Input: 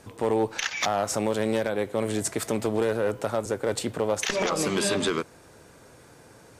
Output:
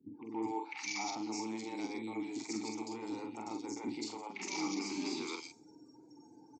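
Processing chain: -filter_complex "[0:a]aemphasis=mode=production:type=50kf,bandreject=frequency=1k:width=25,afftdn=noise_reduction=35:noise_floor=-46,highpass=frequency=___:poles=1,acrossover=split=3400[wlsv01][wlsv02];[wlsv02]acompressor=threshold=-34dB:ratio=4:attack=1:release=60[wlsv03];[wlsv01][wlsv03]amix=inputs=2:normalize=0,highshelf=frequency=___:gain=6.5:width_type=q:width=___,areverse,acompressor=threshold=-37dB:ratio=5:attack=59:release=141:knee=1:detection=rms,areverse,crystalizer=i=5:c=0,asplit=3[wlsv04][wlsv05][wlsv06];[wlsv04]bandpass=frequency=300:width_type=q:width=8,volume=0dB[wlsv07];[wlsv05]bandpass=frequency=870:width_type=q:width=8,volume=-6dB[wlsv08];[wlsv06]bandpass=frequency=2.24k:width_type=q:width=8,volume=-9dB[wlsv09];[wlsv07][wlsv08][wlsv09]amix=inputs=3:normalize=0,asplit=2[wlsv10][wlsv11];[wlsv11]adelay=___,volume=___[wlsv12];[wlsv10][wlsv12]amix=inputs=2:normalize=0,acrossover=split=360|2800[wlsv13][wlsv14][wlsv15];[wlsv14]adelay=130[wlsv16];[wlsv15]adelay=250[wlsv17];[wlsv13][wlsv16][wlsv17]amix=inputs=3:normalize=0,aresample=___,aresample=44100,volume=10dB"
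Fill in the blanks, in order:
120, 3.9k, 3, 45, -5dB, 16000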